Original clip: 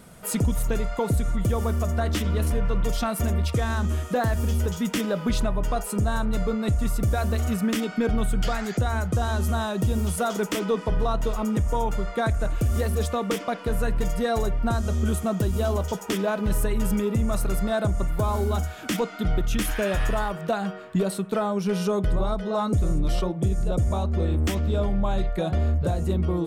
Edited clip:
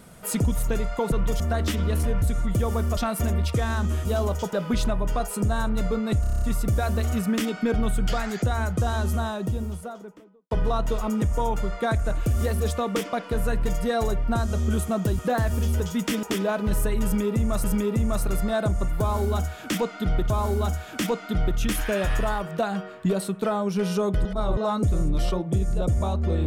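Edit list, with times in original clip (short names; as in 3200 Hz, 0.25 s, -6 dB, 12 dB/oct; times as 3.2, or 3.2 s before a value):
1.12–1.87 swap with 2.69–2.97
4.05–5.09 swap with 15.54–16.02
6.77 stutter 0.03 s, 8 plays
9.22–10.86 studio fade out
16.83–17.43 loop, 2 plays
18.2–19.49 loop, 2 plays
22.15–22.47 reverse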